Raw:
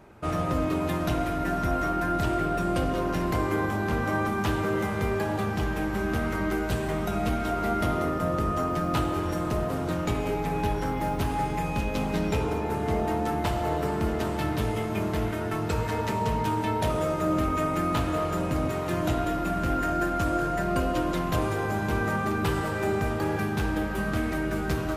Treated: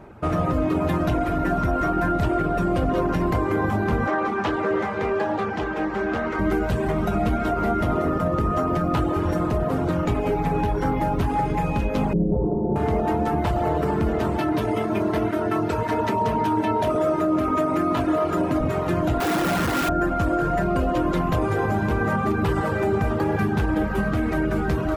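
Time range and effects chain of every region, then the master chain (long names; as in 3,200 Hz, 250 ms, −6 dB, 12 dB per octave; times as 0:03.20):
0:04.07–0:06.39: three-way crossover with the lows and the highs turned down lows −14 dB, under 270 Hz, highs −16 dB, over 7,100 Hz + highs frequency-modulated by the lows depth 0.11 ms
0:12.13–0:12.76: inverse Chebyshev low-pass filter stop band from 3,600 Hz, stop band 80 dB + comb filter 5.5 ms, depth 82%
0:14.38–0:18.61: high-pass filter 130 Hz + notch filter 7,300 Hz + comb filter 3 ms, depth 41%
0:19.20–0:19.89: sign of each sample alone + high-pass filter 94 Hz + high-shelf EQ 9,200 Hz +5.5 dB
whole clip: reverb reduction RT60 0.57 s; high-shelf EQ 2,600 Hz −11 dB; brickwall limiter −22 dBFS; level +8.5 dB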